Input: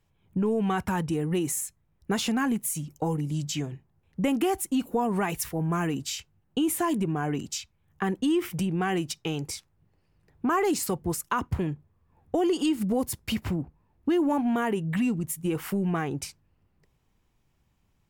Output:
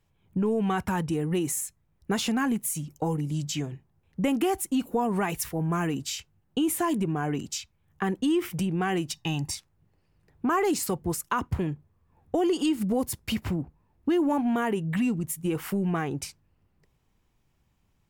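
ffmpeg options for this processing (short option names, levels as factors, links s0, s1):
-filter_complex "[0:a]asettb=1/sr,asplit=3[s0][s1][s2];[s0]atrim=end=9.134[s3];[s1]atrim=start=9.13:end=9.55,asetpts=PTS-STARTPTS,afade=t=in:d=0.004:c=qsin,afade=t=out:st=0.416:d=0.004:c=qsin,aecho=1:1:1.1:0.82,atrim=end_sample=18522[s4];[s2]atrim=start=9.546[s5];[s3][s4]acrossfade=d=0.004:c1=hsin:c2=qsin[s6];[s6][s5]acrossfade=d=0.004:c1=qsin:c2=hsin"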